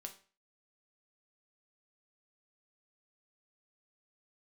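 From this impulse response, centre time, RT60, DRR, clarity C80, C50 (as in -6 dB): 10 ms, 0.40 s, 4.0 dB, 17.5 dB, 12.5 dB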